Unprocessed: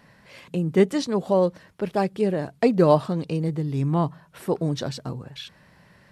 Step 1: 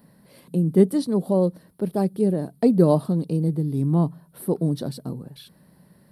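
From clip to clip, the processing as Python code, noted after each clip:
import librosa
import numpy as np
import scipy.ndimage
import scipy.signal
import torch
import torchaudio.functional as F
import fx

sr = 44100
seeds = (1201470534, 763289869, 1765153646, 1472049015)

y = fx.curve_eq(x, sr, hz=(110.0, 170.0, 270.0, 2600.0, 4300.0, 6800.0, 9600.0), db=(0, 9, 8, -10, 1, -9, 14))
y = F.gain(torch.from_numpy(y), -4.5).numpy()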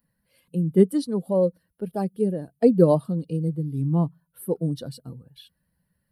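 y = fx.bin_expand(x, sr, power=1.5)
y = fx.small_body(y, sr, hz=(500.0, 2900.0), ring_ms=45, db=8)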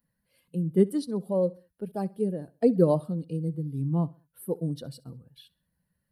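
y = fx.echo_feedback(x, sr, ms=66, feedback_pct=39, wet_db=-22.5)
y = F.gain(torch.from_numpy(y), -4.5).numpy()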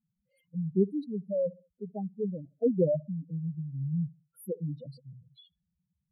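y = fx.spec_expand(x, sr, power=3.8)
y = F.gain(torch.from_numpy(y), -3.5).numpy()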